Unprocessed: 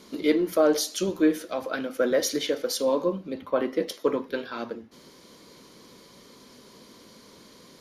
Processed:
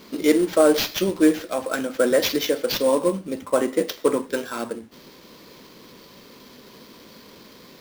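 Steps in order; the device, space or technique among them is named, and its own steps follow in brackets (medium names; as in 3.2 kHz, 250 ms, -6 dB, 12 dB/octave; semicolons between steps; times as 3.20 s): early companding sampler (sample-rate reducer 9.1 kHz, jitter 0%; companded quantiser 6-bit); trim +4.5 dB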